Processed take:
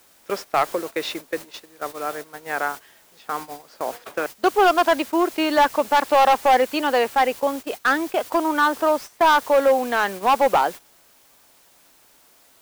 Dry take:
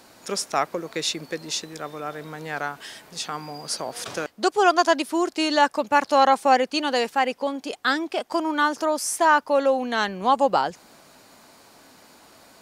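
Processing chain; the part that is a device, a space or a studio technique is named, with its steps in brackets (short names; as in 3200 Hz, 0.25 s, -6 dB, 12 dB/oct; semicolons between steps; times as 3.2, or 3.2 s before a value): aircraft radio (BPF 310–2400 Hz; hard clip -16 dBFS, distortion -11 dB; white noise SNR 19 dB; gate -35 dBFS, range -15 dB); gain +5 dB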